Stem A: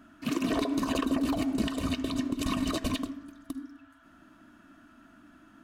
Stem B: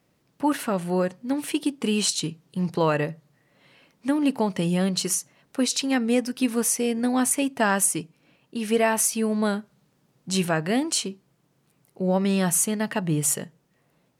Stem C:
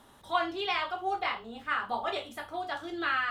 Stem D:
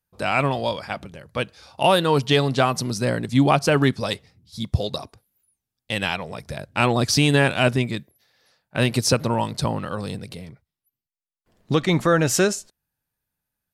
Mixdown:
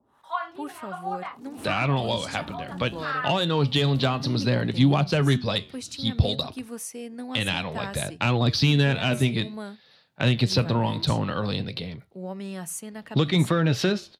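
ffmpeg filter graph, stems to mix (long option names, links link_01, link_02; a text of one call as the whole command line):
ffmpeg -i stem1.wav -i stem2.wav -i stem3.wav -i stem4.wav -filter_complex "[0:a]equalizer=frequency=2300:width=0.72:gain=-14.5,dynaudnorm=framelen=260:gausssize=3:maxgain=9dB,asoftclip=type=tanh:threshold=-25.5dB,adelay=1100,volume=-10dB[link_01];[1:a]adelay=150,volume=-12.5dB[link_02];[2:a]equalizer=frequency=1100:width=0.81:gain=13.5,acrossover=split=500[link_03][link_04];[link_03]aeval=exprs='val(0)*(1-1/2+1/2*cos(2*PI*1.4*n/s))':channel_layout=same[link_05];[link_04]aeval=exprs='val(0)*(1-1/2-1/2*cos(2*PI*1.4*n/s))':channel_layout=same[link_06];[link_05][link_06]amix=inputs=2:normalize=0,volume=-7dB,asplit=2[link_07][link_08];[3:a]highshelf=frequency=5500:width_type=q:width=3:gain=-12.5,acontrast=60,flanger=delay=6.3:depth=6.3:regen=-77:speed=0.58:shape=triangular,adelay=1450,volume=0.5dB[link_09];[link_08]apad=whole_len=297017[link_10];[link_01][link_10]sidechaincompress=threshold=-42dB:ratio=8:attack=43:release=580[link_11];[link_11][link_02][link_07][link_09]amix=inputs=4:normalize=0,highpass=56,acrossover=split=220[link_12][link_13];[link_13]acompressor=threshold=-25dB:ratio=3[link_14];[link_12][link_14]amix=inputs=2:normalize=0" out.wav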